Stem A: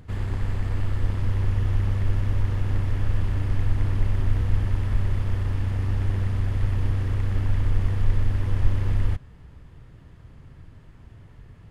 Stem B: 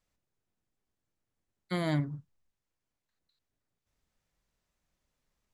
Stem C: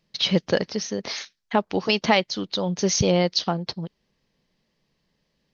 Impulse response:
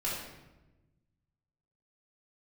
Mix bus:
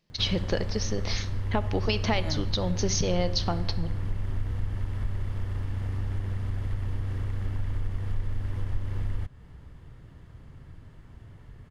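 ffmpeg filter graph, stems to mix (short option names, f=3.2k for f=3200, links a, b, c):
-filter_complex "[0:a]bandreject=f=2.5k:w=19,acompressor=threshold=-29dB:ratio=2,adelay=100,volume=-1dB[a];[1:a]adelay=400,volume=-3.5dB[b];[2:a]acompressor=threshold=-22dB:ratio=3,volume=-3.5dB,asplit=3[c][d][e];[d]volume=-17dB[f];[e]apad=whole_len=261914[g];[b][g]sidechaincompress=threshold=-34dB:ratio=8:attack=16:release=167[h];[3:a]atrim=start_sample=2205[i];[f][i]afir=irnorm=-1:irlink=0[j];[a][h][c][j]amix=inputs=4:normalize=0"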